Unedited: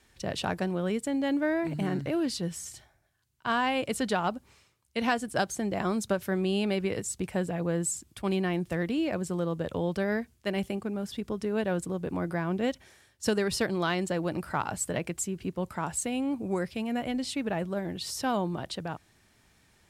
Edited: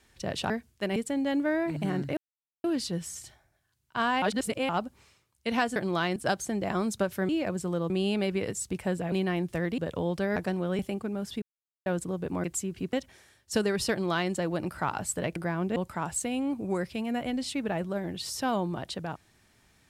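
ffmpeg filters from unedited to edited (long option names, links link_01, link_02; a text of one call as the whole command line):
ffmpeg -i in.wav -filter_complex "[0:a]asplit=20[link_01][link_02][link_03][link_04][link_05][link_06][link_07][link_08][link_09][link_10][link_11][link_12][link_13][link_14][link_15][link_16][link_17][link_18][link_19][link_20];[link_01]atrim=end=0.502[link_21];[link_02]atrim=start=10.138:end=10.602[link_22];[link_03]atrim=start=0.928:end=2.14,asetpts=PTS-STARTPTS,afade=type=out:start_time=1.208:duration=0.004:curve=hsin,apad=pad_dur=0.47[link_23];[link_04]atrim=start=2.14:end=3.722,asetpts=PTS-STARTPTS,afade=type=in:duration=0.004:curve=hsin[link_24];[link_05]atrim=start=3.718:end=4.192,asetpts=PTS-STARTPTS,areverse[link_25];[link_06]atrim=start=4.188:end=5.262[link_26];[link_07]atrim=start=13.628:end=14.032[link_27];[link_08]atrim=start=5.258:end=6.392[link_28];[link_09]atrim=start=8.948:end=9.562[link_29];[link_10]atrim=start=6.388:end=7.612[link_30];[link_11]atrim=start=8.288:end=8.952[link_31];[link_12]atrim=start=9.558:end=10.142[link_32];[link_13]atrim=start=0.498:end=0.932[link_33];[link_14]atrim=start=10.598:end=11.23,asetpts=PTS-STARTPTS,afade=type=out:start_time=0.628:duration=0.004:curve=hsin[link_34];[link_15]atrim=start=11.23:end=11.67,asetpts=PTS-STARTPTS,volume=0[link_35];[link_16]atrim=start=11.67:end=12.252,asetpts=PTS-STARTPTS,afade=type=in:duration=0.004:curve=hsin[link_36];[link_17]atrim=start=15.078:end=15.572[link_37];[link_18]atrim=start=12.648:end=15.082[link_38];[link_19]atrim=start=12.248:end=12.652[link_39];[link_20]atrim=start=15.568[link_40];[link_21][link_22]acrossfade=duration=0.004:curve1=hsin:curve2=hsin[link_41];[link_23][link_24]concat=n=2:v=0:a=1[link_42];[link_41][link_42]acrossfade=duration=0.004:curve1=hsin:curve2=hsin[link_43];[link_43][link_25]acrossfade=duration=0.004:curve1=hsin:curve2=hsin[link_44];[link_44][link_26]acrossfade=duration=0.004:curve1=hsin:curve2=hsin[link_45];[link_45][link_27]acrossfade=duration=0.004:curve1=hsin:curve2=hsin[link_46];[link_46][link_28]acrossfade=duration=0.004:curve1=hsin:curve2=hsin[link_47];[link_47][link_29]acrossfade=duration=0.004:curve1=hsin:curve2=hsin[link_48];[link_48][link_30]acrossfade=duration=0.004:curve1=hsin:curve2=hsin[link_49];[link_49][link_31]acrossfade=duration=0.004:curve1=hsin:curve2=hsin[link_50];[link_50][link_32]acrossfade=duration=0.004:curve1=hsin:curve2=hsin[link_51];[link_51][link_33]acrossfade=duration=0.004:curve1=hsin:curve2=hsin[link_52];[link_34][link_35][link_36]concat=n=3:v=0:a=1[link_53];[link_52][link_53]acrossfade=duration=0.004:curve1=hsin:curve2=hsin[link_54];[link_54][link_37]acrossfade=duration=0.004:curve1=hsin:curve2=hsin[link_55];[link_55][link_38]acrossfade=duration=0.004:curve1=hsin:curve2=hsin[link_56];[link_56][link_39]acrossfade=duration=0.004:curve1=hsin:curve2=hsin[link_57];[link_57][link_40]acrossfade=duration=0.004:curve1=hsin:curve2=hsin" out.wav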